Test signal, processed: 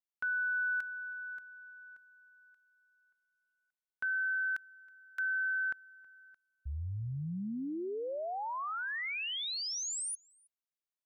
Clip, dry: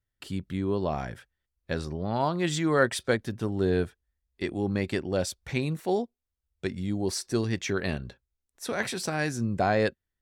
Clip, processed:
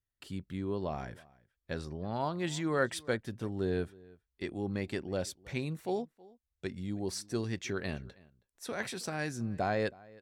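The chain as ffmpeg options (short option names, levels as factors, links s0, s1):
-filter_complex "[0:a]asplit=2[s0][s1];[s1]adelay=320.7,volume=0.0708,highshelf=f=4000:g=-7.22[s2];[s0][s2]amix=inputs=2:normalize=0,volume=0.447"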